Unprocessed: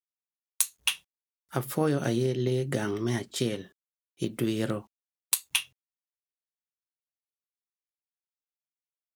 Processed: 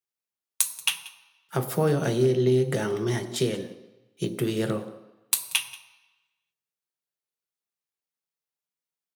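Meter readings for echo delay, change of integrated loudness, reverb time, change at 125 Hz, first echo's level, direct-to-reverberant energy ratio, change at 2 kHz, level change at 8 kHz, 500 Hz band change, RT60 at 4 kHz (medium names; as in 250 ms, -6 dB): 183 ms, +3.5 dB, 1.0 s, +3.5 dB, -20.5 dB, 7.5 dB, +2.0 dB, +2.5 dB, +5.5 dB, 0.95 s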